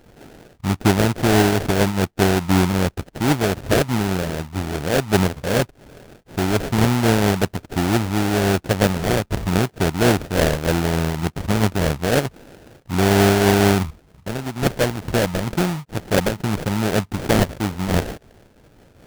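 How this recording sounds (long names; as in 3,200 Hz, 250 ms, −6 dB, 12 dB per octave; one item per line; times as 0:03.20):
aliases and images of a low sample rate 1,100 Hz, jitter 20%
amplitude modulation by smooth noise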